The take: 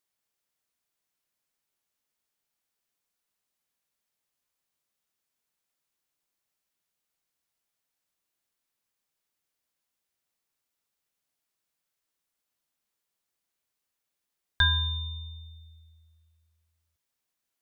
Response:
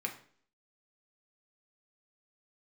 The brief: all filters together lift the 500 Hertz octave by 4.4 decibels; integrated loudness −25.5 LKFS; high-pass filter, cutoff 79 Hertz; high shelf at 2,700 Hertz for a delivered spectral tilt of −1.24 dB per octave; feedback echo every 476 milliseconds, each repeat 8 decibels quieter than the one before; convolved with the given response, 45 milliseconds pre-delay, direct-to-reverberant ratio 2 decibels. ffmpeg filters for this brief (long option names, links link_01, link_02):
-filter_complex "[0:a]highpass=79,equalizer=frequency=500:width_type=o:gain=6,highshelf=frequency=2700:gain=-7,aecho=1:1:476|952|1428|1904|2380:0.398|0.159|0.0637|0.0255|0.0102,asplit=2[link_01][link_02];[1:a]atrim=start_sample=2205,adelay=45[link_03];[link_02][link_03]afir=irnorm=-1:irlink=0,volume=-4.5dB[link_04];[link_01][link_04]amix=inputs=2:normalize=0,volume=6.5dB"